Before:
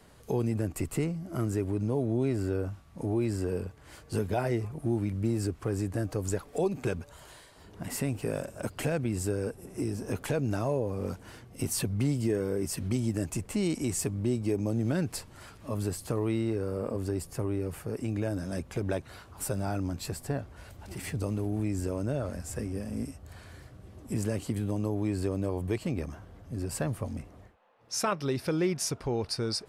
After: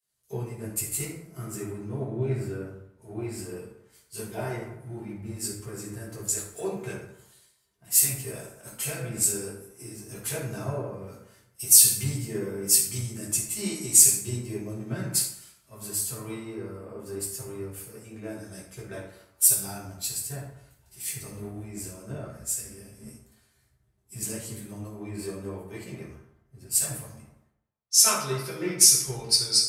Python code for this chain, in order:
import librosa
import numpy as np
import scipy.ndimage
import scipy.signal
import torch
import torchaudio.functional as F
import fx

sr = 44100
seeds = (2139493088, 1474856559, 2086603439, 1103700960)

y = F.preemphasis(torch.from_numpy(x), 0.9).numpy()
y = fx.rev_fdn(y, sr, rt60_s=1.3, lf_ratio=1.0, hf_ratio=0.5, size_ms=45.0, drr_db=-7.5)
y = fx.band_widen(y, sr, depth_pct=100)
y = y * librosa.db_to_amplitude(4.0)